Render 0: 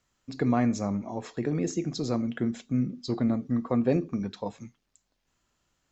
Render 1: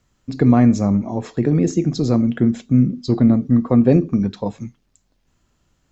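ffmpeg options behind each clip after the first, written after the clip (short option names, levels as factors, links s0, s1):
-af "lowshelf=f=380:g=10,volume=1.78"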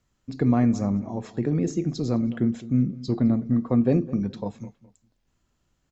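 -filter_complex "[0:a]asplit=2[s0][s1];[s1]adelay=209,lowpass=f=2000:p=1,volume=0.141,asplit=2[s2][s3];[s3]adelay=209,lowpass=f=2000:p=1,volume=0.26[s4];[s0][s2][s4]amix=inputs=3:normalize=0,volume=0.422"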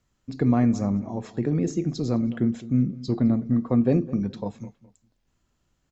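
-af anull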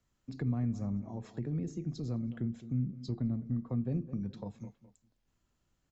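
-filter_complex "[0:a]acrossover=split=170[s0][s1];[s1]acompressor=threshold=0.0126:ratio=3[s2];[s0][s2]amix=inputs=2:normalize=0,volume=0.501"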